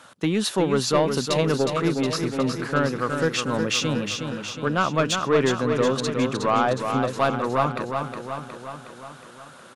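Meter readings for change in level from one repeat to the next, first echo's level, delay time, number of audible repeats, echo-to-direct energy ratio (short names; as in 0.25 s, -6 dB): -4.5 dB, -6.0 dB, 0.364 s, 7, -4.0 dB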